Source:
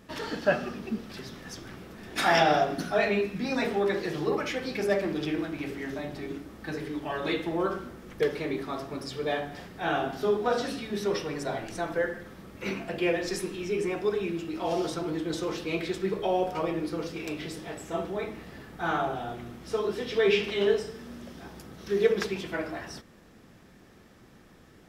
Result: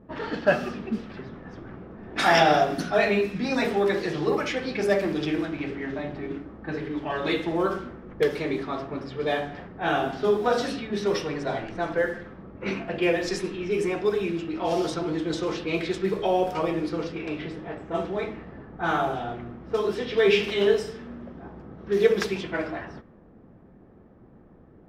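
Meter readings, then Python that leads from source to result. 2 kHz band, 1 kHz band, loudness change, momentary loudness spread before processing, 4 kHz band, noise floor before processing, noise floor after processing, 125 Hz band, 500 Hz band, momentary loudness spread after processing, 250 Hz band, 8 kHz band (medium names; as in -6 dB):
+3.5 dB, +3.5 dB, +3.5 dB, 15 LU, +3.0 dB, -55 dBFS, -52 dBFS, +3.5 dB, +3.5 dB, 15 LU, +3.5 dB, +0.5 dB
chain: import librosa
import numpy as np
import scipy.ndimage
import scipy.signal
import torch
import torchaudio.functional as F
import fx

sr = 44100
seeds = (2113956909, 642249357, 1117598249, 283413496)

y = fx.env_lowpass(x, sr, base_hz=730.0, full_db=-24.5)
y = y * librosa.db_to_amplitude(3.5)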